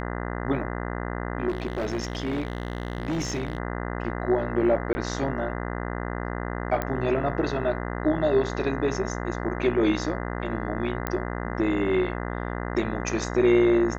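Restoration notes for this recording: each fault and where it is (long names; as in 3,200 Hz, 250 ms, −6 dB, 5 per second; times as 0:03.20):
mains buzz 60 Hz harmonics 34 −31 dBFS
0:01.48–0:03.58: clipping −23.5 dBFS
0:04.93–0:04.95: drop-out 20 ms
0:06.82: click −13 dBFS
0:11.07: click −12 dBFS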